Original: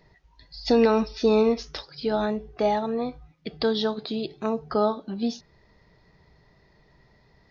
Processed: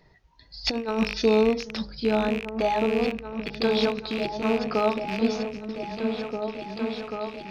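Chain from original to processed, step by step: rattle on loud lows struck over -41 dBFS, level -21 dBFS; de-hum 51.81 Hz, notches 12; 0.64–1.22 s: compressor with a negative ratio -24 dBFS, ratio -0.5; on a send: delay with an opening low-pass 789 ms, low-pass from 200 Hz, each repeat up 2 oct, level -3 dB

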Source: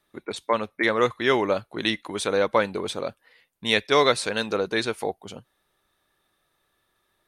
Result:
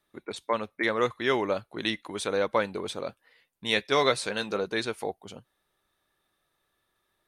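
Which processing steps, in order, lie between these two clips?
3.07–4.64 s: doubling 15 ms -10.5 dB; trim -4.5 dB

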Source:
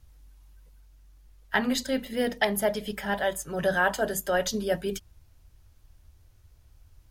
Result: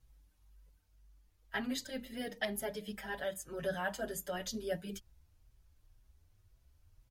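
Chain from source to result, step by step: dynamic bell 910 Hz, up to -5 dB, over -38 dBFS, Q 1.2; endless flanger 5.8 ms +2 Hz; trim -7 dB

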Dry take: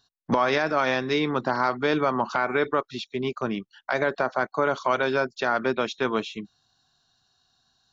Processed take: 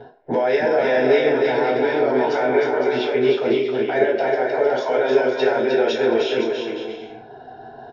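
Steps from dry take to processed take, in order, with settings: level-controlled noise filter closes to 1 kHz, open at -22 dBFS; upward compressor, threshold -30 dBFS; peak limiter -24 dBFS, peak gain reduction 13.5 dB; static phaser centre 480 Hz, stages 4; bouncing-ball echo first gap 310 ms, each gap 0.65×, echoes 5; reverberation RT60 0.50 s, pre-delay 3 ms, DRR -12 dB; tape noise reduction on one side only decoder only

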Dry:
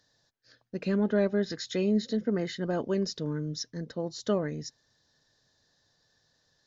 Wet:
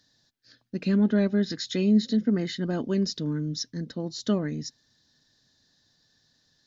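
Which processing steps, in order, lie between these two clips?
graphic EQ 250/500/1000/4000 Hz +7/-6/-3/+4 dB; trim +1.5 dB

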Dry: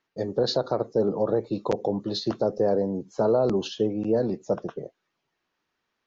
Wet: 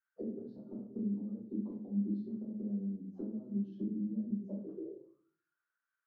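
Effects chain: dynamic bell 850 Hz, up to -3 dB, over -37 dBFS, Q 0.96; compression 8:1, threshold -27 dBFS, peak gain reduction 9 dB; auto-wah 210–1500 Hz, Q 15, down, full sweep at -28 dBFS; simulated room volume 53 m³, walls mixed, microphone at 1.7 m; trim -6 dB

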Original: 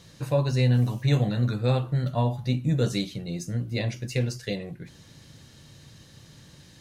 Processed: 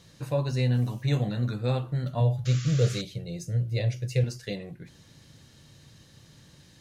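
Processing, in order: 2.20–4.24 s: graphic EQ 125/250/500/1000 Hz +9/-12/+8/-8 dB; 2.45–3.02 s: painted sound noise 1.1–7.4 kHz -39 dBFS; trim -3.5 dB

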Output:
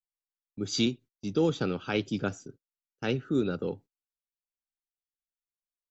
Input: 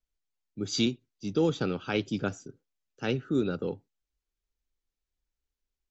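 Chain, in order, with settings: gate -48 dBFS, range -27 dB

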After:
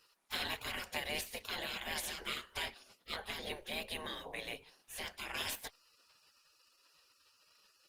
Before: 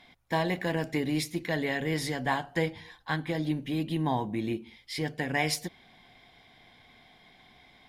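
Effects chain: spectral gate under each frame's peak -20 dB weak; trim +5 dB; Opus 24 kbps 48 kHz

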